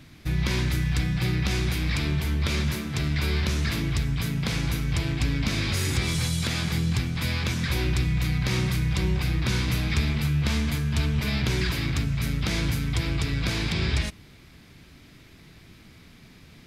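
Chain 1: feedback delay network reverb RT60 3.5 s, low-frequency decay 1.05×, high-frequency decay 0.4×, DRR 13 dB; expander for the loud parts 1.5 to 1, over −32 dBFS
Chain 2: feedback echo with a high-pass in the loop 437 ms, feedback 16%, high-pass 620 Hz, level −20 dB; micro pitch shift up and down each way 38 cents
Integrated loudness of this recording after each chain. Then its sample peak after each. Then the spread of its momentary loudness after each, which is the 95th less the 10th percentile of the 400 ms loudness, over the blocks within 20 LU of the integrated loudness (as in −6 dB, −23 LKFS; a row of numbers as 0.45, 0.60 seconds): −28.5, −30.0 LKFS; −13.0, −14.5 dBFS; 4, 3 LU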